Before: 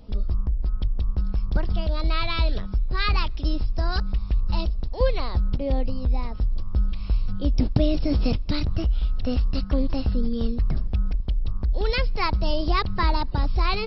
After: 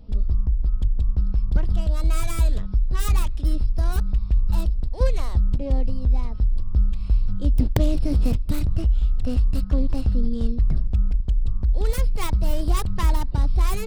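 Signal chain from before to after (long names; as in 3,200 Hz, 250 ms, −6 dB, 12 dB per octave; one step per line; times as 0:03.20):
stylus tracing distortion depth 0.4 ms
wrap-around overflow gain 7.5 dB
low-shelf EQ 260 Hz +9 dB
level −5.5 dB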